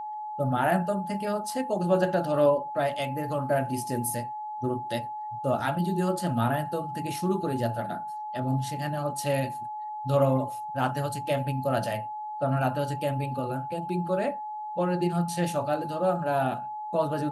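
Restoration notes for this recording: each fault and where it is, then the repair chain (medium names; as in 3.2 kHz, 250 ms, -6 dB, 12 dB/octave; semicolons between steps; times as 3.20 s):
whine 850 Hz -33 dBFS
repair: band-stop 850 Hz, Q 30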